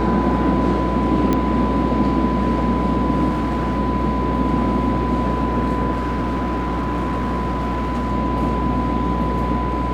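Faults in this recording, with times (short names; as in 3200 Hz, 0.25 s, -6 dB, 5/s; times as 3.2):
buzz 60 Hz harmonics 38 -24 dBFS
tone 1000 Hz -24 dBFS
1.33 pop -7 dBFS
3.29–3.79 clipped -17 dBFS
5.91–8.12 clipped -18 dBFS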